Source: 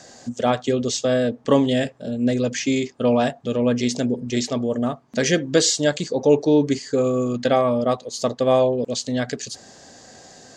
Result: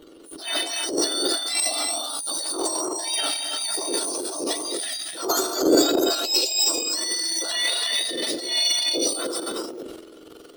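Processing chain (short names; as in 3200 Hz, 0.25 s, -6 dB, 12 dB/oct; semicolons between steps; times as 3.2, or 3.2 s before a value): spectrum mirrored in octaves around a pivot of 1500 Hz; non-linear reverb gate 0.35 s rising, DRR 2.5 dB; in parallel at -5.5 dB: backlash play -34 dBFS; on the sum: transient shaper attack -11 dB, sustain +12 dB; gain -6.5 dB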